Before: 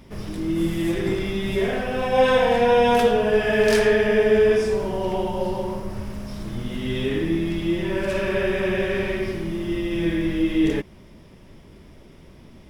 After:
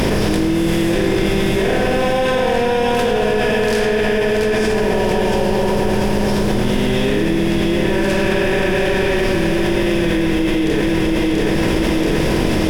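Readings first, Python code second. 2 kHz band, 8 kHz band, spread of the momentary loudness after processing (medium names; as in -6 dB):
+6.5 dB, +11.0 dB, 1 LU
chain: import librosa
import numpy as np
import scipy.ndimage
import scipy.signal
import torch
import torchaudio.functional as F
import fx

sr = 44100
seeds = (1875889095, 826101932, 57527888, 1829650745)

y = fx.bin_compress(x, sr, power=0.6)
y = fx.peak_eq(y, sr, hz=790.0, db=-2.5, octaves=2.9)
y = fx.echo_feedback(y, sr, ms=682, feedback_pct=48, wet_db=-7.0)
y = fx.env_flatten(y, sr, amount_pct=100)
y = F.gain(torch.from_numpy(y), -2.5).numpy()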